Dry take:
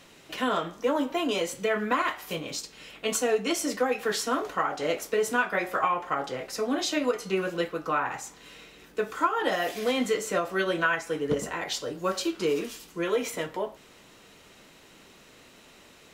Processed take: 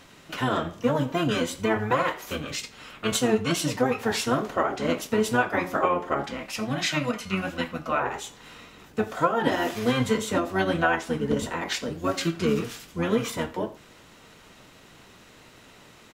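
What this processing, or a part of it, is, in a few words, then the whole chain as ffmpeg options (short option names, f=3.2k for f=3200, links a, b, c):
octave pedal: -filter_complex "[0:a]asplit=2[a][b];[b]asetrate=22050,aresample=44100,atempo=2,volume=-1dB[c];[a][c]amix=inputs=2:normalize=0,asettb=1/sr,asplit=3[d][e][f];[d]atrim=end=6.244[g];[e]atrim=start=6.24:end=8.01,asetpts=PTS-STARTPTS,afade=t=in:d=0.004:c=qsin,afade=t=out:st=1.766:d=0.004:c=qsin,equalizer=f=100:t=o:w=0.67:g=-7,equalizer=f=400:t=o:w=0.67:g=-10,equalizer=f=2.5k:t=o:w=0.67:g=4[h];[f]atrim=start=8.006[i];[g][h]acrossfade=d=0.004:c1=hsin:c2=qsin[j];[j][i]acrossfade=d=0.004:c1=qsin:c2=hsin,aecho=1:1:84:0.0794"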